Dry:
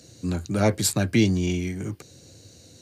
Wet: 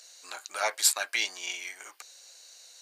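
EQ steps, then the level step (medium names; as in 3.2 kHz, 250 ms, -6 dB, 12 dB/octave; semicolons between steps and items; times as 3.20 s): high-pass 810 Hz 24 dB/octave; +1.5 dB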